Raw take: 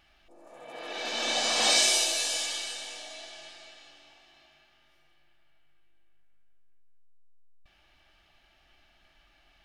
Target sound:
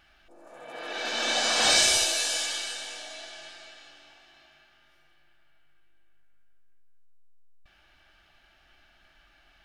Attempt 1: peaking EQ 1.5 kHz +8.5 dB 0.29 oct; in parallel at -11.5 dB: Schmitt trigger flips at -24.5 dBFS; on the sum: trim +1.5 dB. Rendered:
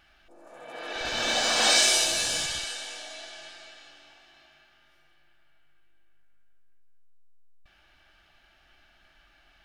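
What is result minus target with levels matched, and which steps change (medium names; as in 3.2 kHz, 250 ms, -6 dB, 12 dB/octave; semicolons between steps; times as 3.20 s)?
Schmitt trigger: distortion -20 dB
change: Schmitt trigger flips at -15.5 dBFS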